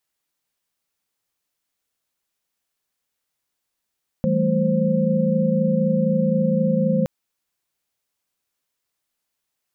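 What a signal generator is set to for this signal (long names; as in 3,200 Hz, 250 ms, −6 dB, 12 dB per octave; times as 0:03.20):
held notes E3/G3/A3/C5 sine, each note −22 dBFS 2.82 s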